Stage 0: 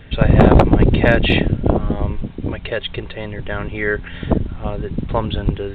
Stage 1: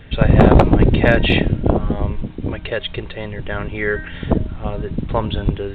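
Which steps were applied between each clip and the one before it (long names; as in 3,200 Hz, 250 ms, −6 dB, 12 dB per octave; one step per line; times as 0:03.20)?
hum removal 312.2 Hz, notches 21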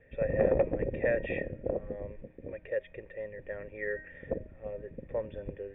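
formant resonators in series e
level −4.5 dB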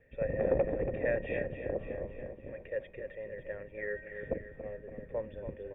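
on a send: repeating echo 282 ms, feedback 58%, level −9 dB
on the sum: amplitude modulation by smooth noise, depth 55%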